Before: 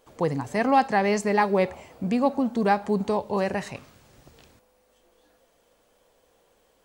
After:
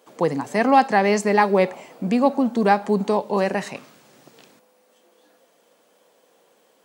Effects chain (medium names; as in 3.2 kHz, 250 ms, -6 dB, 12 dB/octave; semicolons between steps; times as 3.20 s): high-pass 170 Hz 24 dB/octave; trim +4.5 dB